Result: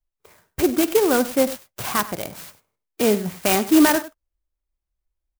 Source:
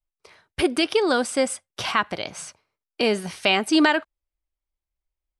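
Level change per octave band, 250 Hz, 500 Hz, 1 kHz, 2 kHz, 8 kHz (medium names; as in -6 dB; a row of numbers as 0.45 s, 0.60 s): +4.5 dB, +3.0 dB, +0.5 dB, -3.0 dB, +6.0 dB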